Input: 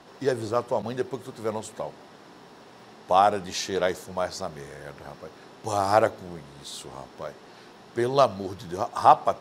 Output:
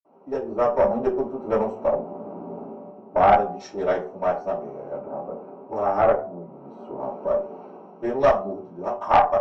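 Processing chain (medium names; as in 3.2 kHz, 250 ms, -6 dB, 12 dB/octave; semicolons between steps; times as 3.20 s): local Wiener filter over 25 samples; 1.88–3.28 s: tilt EQ -3 dB/octave; 4.93–6.94 s: low-pass 1.4 kHz 6 dB/octave; level rider gain up to 15 dB; reverberation RT60 0.45 s, pre-delay 47 ms; valve stage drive 6 dB, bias 0.35; peaking EQ 320 Hz -6 dB 1.2 oct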